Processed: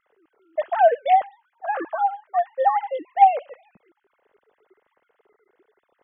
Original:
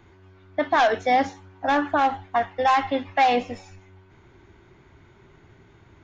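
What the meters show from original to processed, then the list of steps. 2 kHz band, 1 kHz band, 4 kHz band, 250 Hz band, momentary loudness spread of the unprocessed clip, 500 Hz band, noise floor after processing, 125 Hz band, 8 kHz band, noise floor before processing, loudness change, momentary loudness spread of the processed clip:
−8.0 dB, +2.5 dB, below −10 dB, −14.5 dB, 11 LU, +1.5 dB, −75 dBFS, below −25 dB, can't be measured, −54 dBFS, +1.5 dB, 14 LU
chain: three sine waves on the formant tracks
low-shelf EQ 470 Hz +10 dB
notch filter 2,300 Hz, Q 13
level −1.5 dB

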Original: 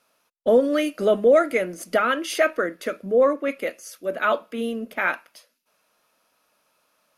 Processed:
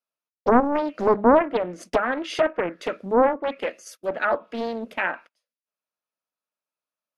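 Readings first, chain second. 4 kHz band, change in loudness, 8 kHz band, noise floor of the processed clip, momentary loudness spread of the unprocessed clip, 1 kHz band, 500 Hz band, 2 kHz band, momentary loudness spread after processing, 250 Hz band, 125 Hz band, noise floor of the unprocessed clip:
−3.5 dB, −1.0 dB, −7.5 dB, below −85 dBFS, 13 LU, +3.5 dB, −2.0 dB, −2.5 dB, 13 LU, +1.5 dB, can't be measured, −70 dBFS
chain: treble cut that deepens with the level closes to 1,200 Hz, closed at −18 dBFS
noise gate −42 dBFS, range −27 dB
highs frequency-modulated by the lows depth 0.91 ms

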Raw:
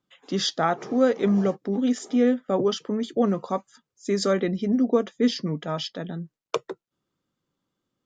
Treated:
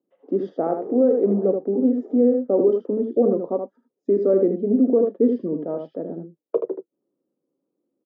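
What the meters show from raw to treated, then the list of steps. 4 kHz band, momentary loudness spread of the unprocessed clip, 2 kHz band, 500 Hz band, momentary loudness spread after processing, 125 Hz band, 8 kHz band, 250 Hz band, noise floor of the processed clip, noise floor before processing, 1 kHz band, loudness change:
below −30 dB, 10 LU, below −15 dB, +6.0 dB, 13 LU, −3.5 dB, below −40 dB, +2.5 dB, −81 dBFS, below −85 dBFS, −4.5 dB, +3.5 dB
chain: flat-topped band-pass 390 Hz, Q 1.2
ambience of single reflections 34 ms −15 dB, 78 ms −6.5 dB
boost into a limiter +15 dB
level −8 dB

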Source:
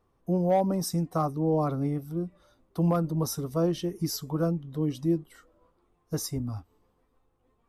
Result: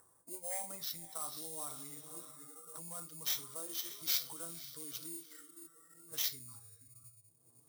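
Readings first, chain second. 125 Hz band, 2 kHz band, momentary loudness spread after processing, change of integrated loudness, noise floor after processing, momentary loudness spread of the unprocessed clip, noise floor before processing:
−30.5 dB, −2.5 dB, 19 LU, −10.5 dB, −68 dBFS, 10 LU, −71 dBFS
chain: feedback delay with all-pass diffusion 536 ms, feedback 43%, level −14.5 dB
low-pass that shuts in the quiet parts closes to 810 Hz, open at −24.5 dBFS
rectangular room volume 470 cubic metres, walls furnished, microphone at 0.78 metres
noise reduction from a noise print of the clip's start 23 dB
upward compression, threshold −40 dBFS
low-pass filter sweep 1,700 Hz → 8,700 Hz, 0:00.15–0:02.07
parametric band 100 Hz +13.5 dB 1 octave
downward compressor 2 to 1, threshold −45 dBFS, peak gain reduction 17 dB
Butterworth band-reject 2,700 Hz, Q 7
sample-rate reduction 9,300 Hz, jitter 0%
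brickwall limiter −32 dBFS, peak gain reduction 6.5 dB
first difference
level +13 dB

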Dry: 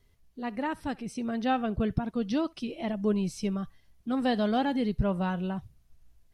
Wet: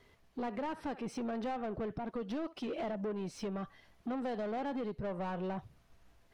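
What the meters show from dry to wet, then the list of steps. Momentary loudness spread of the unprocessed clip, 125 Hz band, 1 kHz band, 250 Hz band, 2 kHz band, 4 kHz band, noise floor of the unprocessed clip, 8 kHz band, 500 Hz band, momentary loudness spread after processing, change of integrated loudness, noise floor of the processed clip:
9 LU, −11.5 dB, −7.5 dB, −10.0 dB, −9.0 dB, −11.0 dB, −63 dBFS, −8.0 dB, −5.5 dB, 4 LU, −8.5 dB, −66 dBFS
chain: dynamic equaliser 480 Hz, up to +6 dB, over −42 dBFS, Q 0.76
downward compressor 12 to 1, threshold −36 dBFS, peak gain reduction 18.5 dB
mid-hump overdrive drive 23 dB, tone 1,300 Hz, clips at −27 dBFS
level −2 dB

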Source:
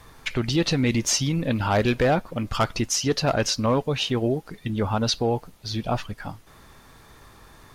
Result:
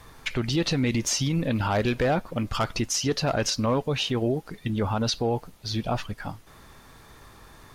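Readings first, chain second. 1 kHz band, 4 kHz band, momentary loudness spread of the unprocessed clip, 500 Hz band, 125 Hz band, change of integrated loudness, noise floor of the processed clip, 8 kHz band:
−2.5 dB, −2.0 dB, 9 LU, −2.5 dB, −1.5 dB, −2.5 dB, −51 dBFS, −2.5 dB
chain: brickwall limiter −16.5 dBFS, peak gain reduction 5 dB

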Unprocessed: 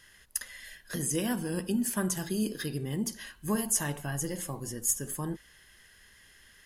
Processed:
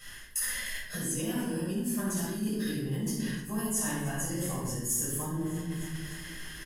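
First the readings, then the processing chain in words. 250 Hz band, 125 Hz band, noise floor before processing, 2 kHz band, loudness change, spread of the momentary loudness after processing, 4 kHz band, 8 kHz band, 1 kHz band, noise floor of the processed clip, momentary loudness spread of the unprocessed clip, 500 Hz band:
+0.5 dB, +2.0 dB, −59 dBFS, +2.0 dB, −0.5 dB, 7 LU, +1.0 dB, −0.5 dB, −0.5 dB, −44 dBFS, 9 LU, −1.0 dB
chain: repeating echo 303 ms, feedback 53%, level −21 dB
rectangular room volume 580 cubic metres, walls mixed, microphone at 6.6 metres
reversed playback
downward compressor 4 to 1, threshold −33 dBFS, peak gain reduction 19 dB
reversed playback
high-shelf EQ 10,000 Hz +6 dB

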